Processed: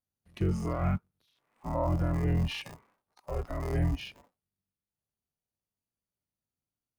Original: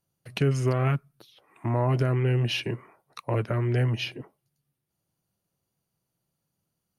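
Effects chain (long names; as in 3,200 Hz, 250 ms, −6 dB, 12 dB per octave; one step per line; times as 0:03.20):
sub-harmonics by changed cycles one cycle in 3, inverted
noise reduction from a noise print of the clip's start 10 dB
harmonic and percussive parts rebalanced percussive −16 dB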